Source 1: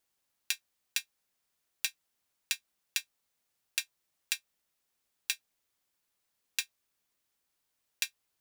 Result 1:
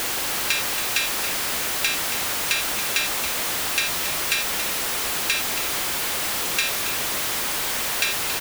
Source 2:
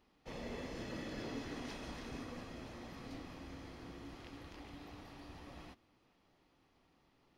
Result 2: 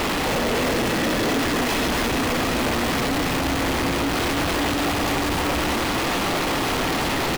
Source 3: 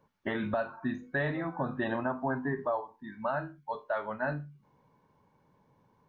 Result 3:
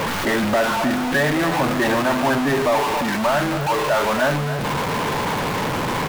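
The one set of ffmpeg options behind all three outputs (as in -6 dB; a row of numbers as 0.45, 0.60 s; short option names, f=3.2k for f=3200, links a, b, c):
-af "aeval=exprs='val(0)+0.5*0.0841*sgn(val(0))':c=same,bass=f=250:g=-4,treble=f=4k:g=-5,aecho=1:1:277:0.299,volume=6dB"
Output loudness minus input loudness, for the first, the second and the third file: +15.0, +26.0, +14.0 LU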